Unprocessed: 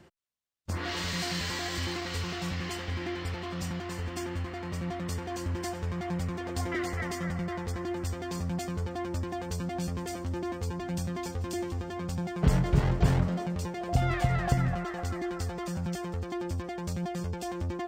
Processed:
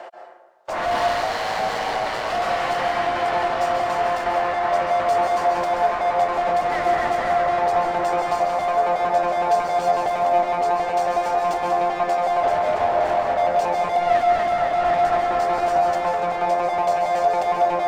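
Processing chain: in parallel at +2.5 dB: compressor with a negative ratio -33 dBFS; on the sum: resonant high-pass 660 Hz, resonance Q 4.6; 1.06–2.30 s: ring modulator 55 Hz; overdrive pedal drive 29 dB, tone 1.1 kHz, clips at -7.5 dBFS; plate-style reverb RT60 1.3 s, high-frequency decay 0.5×, pre-delay 120 ms, DRR 1.5 dB; trim -7.5 dB

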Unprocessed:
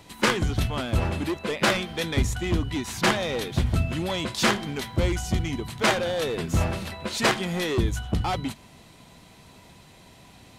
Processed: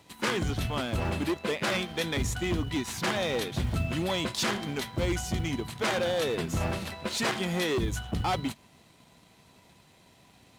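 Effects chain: companding laws mixed up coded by A; high-pass 78 Hz 6 dB/octave; peak limiter -19 dBFS, peak gain reduction 9 dB

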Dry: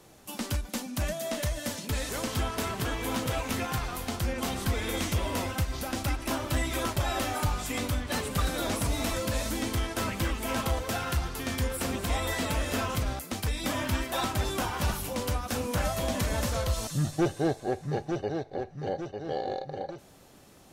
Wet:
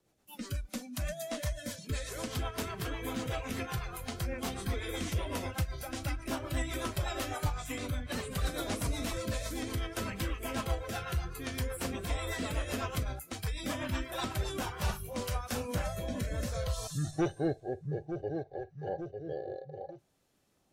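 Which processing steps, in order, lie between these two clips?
rotary cabinet horn 8 Hz, later 0.6 Hz, at 14.30 s; spectral noise reduction 14 dB; trim -3 dB

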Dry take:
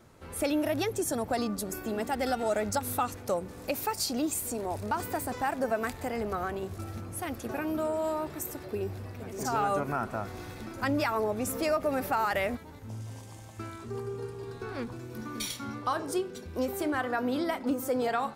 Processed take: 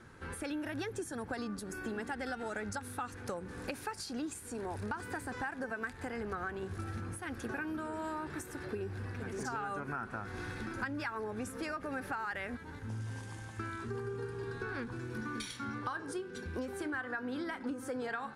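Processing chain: graphic EQ with 31 bands 630 Hz -10 dB, 1.6 kHz +11 dB, 10 kHz +10 dB; compression 6:1, threshold -37 dBFS, peak gain reduction 14.5 dB; distance through air 69 m; trim +1.5 dB

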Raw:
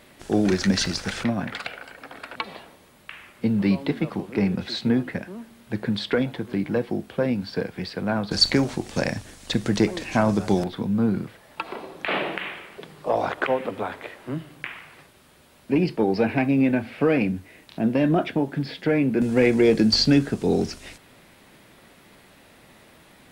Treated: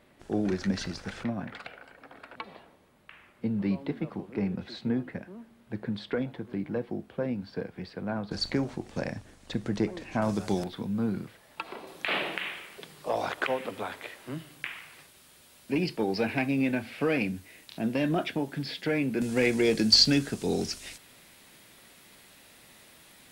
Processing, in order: treble shelf 2.5 kHz -8 dB, from 10.22 s +5 dB, from 11.87 s +12 dB; trim -7.5 dB

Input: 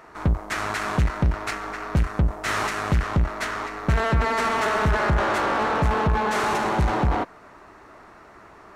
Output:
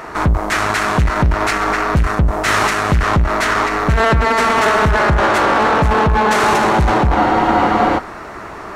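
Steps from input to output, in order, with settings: loudness maximiser +22.5 dB; spectral freeze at 7.17 s, 0.81 s; trim -5.5 dB

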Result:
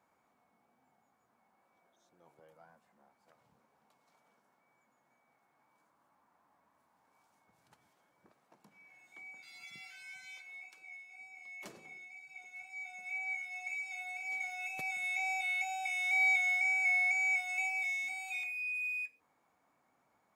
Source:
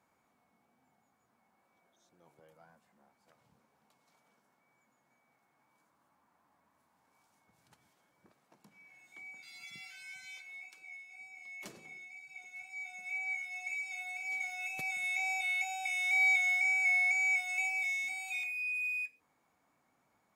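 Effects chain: peaking EQ 790 Hz +5 dB 2.8 oct; trim -3.5 dB

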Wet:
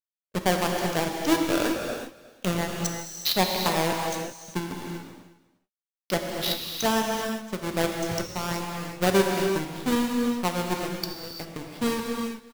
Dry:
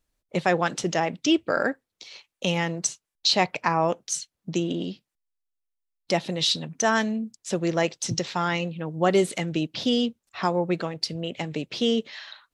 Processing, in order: square wave that keeps the level; power-law waveshaper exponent 2; saturation -11 dBFS, distortion -19 dB; on a send: delay 358 ms -19.5 dB; on the sum: gated-style reverb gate 420 ms flat, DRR 1 dB

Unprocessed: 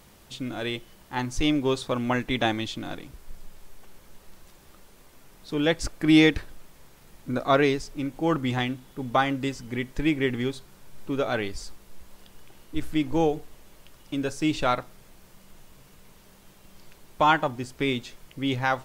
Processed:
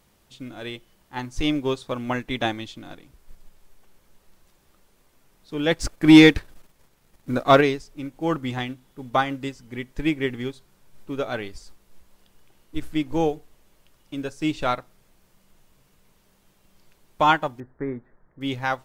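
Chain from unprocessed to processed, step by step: 5.71–7.61 s: waveshaping leveller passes 1; 17.60–18.41 s: elliptic low-pass 1.8 kHz, stop band 40 dB; upward expansion 1.5:1, over -38 dBFS; trim +5 dB

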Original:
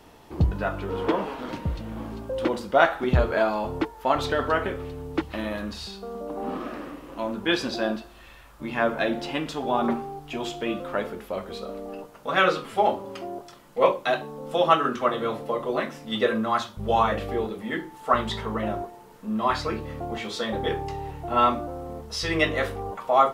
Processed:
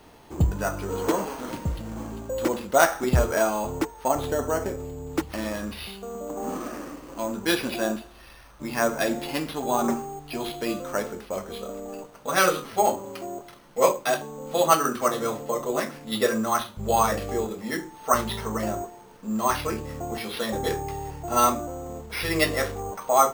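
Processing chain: 4.08–5.07 s: high-order bell 2.4 kHz -8 dB 2.5 oct; careless resampling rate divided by 6×, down none, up hold

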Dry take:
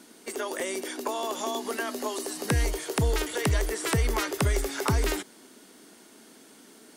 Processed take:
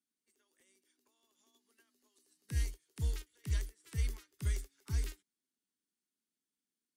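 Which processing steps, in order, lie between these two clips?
amplifier tone stack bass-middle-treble 6-0-2; upward expansion 2.5:1, over -54 dBFS; trim +6 dB

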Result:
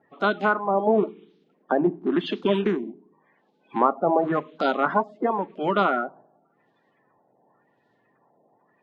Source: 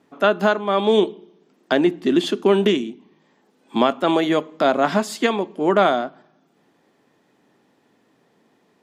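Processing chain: coarse spectral quantiser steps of 30 dB; LFO low-pass sine 0.92 Hz 670–3800 Hz; trim -5.5 dB

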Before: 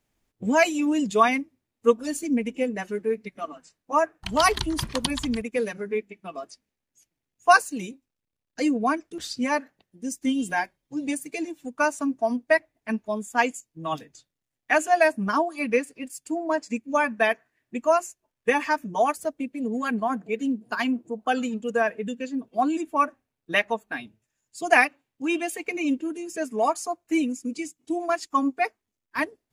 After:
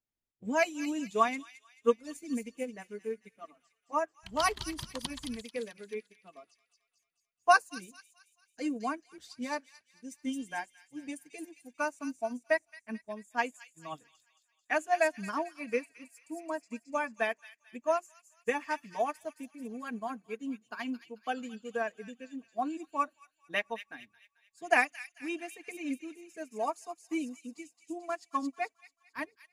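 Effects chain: feedback echo behind a high-pass 220 ms, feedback 53%, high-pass 2.8 kHz, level -3.5 dB; upward expansion 1.5:1, over -42 dBFS; trim -5.5 dB

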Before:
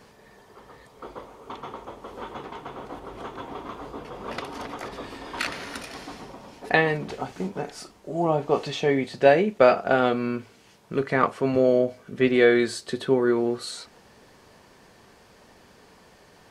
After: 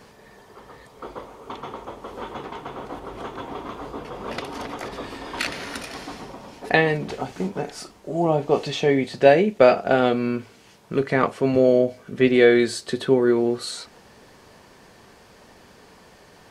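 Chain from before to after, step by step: dynamic bell 1.2 kHz, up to -5 dB, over -38 dBFS, Q 1.4; trim +3.5 dB

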